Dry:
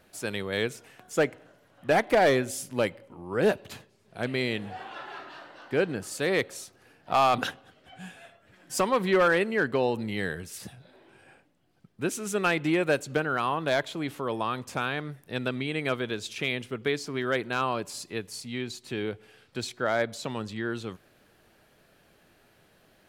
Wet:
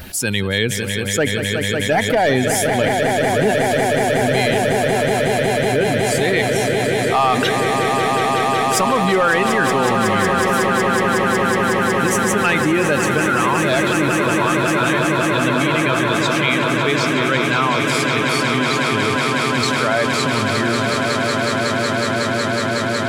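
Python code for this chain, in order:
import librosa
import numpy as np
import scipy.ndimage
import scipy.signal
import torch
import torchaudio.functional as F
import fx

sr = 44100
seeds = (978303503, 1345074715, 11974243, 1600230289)

p1 = fx.bin_expand(x, sr, power=1.5)
p2 = fx.peak_eq(p1, sr, hz=500.0, db=-3.5, octaves=0.91)
p3 = p2 + fx.echo_swell(p2, sr, ms=184, loudest=8, wet_db=-10.0, dry=0)
p4 = fx.env_flatten(p3, sr, amount_pct=70)
y = p4 * 10.0 ** (7.5 / 20.0)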